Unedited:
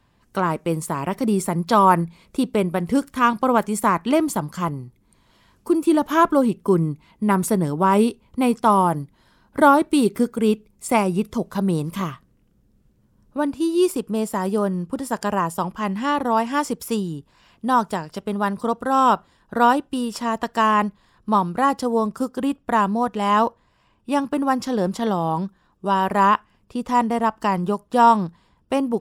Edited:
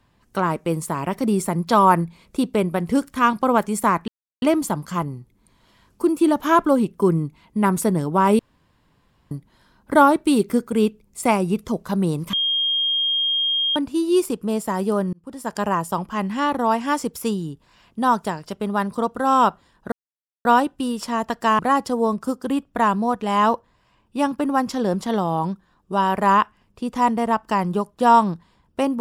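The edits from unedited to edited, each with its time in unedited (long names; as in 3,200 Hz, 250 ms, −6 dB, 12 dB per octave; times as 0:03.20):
0:04.08: splice in silence 0.34 s
0:08.05–0:08.97: fill with room tone
0:11.99–0:13.42: beep over 3,230 Hz −18 dBFS
0:14.79–0:15.29: fade in
0:19.58: splice in silence 0.53 s
0:20.72–0:21.52: remove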